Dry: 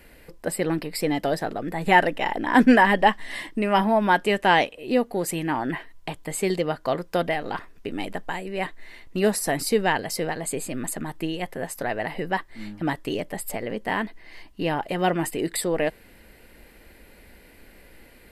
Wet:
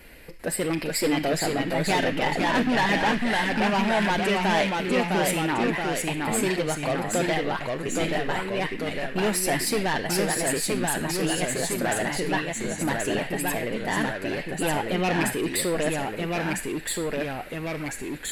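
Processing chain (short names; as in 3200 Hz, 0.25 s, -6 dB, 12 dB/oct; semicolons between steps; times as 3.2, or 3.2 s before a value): rattling part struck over -24 dBFS, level -16 dBFS; in parallel at +1.5 dB: limiter -14.5 dBFS, peak gain reduction 11 dB; on the sum: soft clip -15.5 dBFS, distortion -10 dB; on a send at -2 dB: resonant high-pass 2200 Hz, resonance Q 1.6 + reverb RT60 0.85 s, pre-delay 7 ms; on the sum: echoes that change speed 0.394 s, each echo -1 st, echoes 2; gain -5 dB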